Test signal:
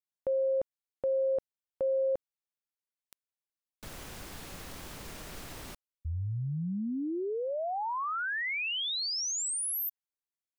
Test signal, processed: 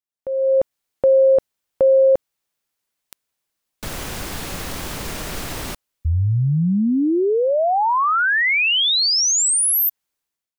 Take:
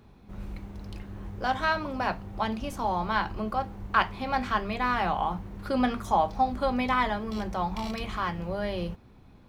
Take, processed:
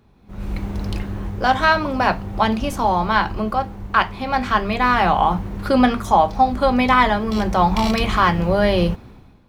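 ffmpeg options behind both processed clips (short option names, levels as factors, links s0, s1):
-af "dynaudnorm=f=130:g=7:m=6.68,volume=0.891"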